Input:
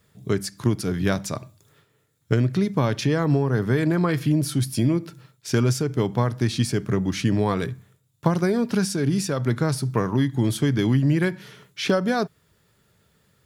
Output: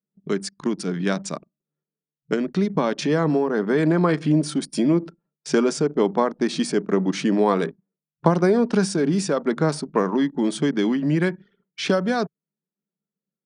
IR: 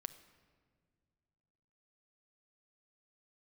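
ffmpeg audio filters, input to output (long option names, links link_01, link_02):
-filter_complex "[0:a]afftfilt=real='re*between(b*sr/4096,150,9700)':imag='im*between(b*sr/4096,150,9700)':win_size=4096:overlap=0.75,anlmdn=1.58,acrossover=split=300|1200|5800[link_01][link_02][link_03][link_04];[link_02]dynaudnorm=framelen=320:gausssize=21:maxgain=7dB[link_05];[link_01][link_05][link_03][link_04]amix=inputs=4:normalize=0"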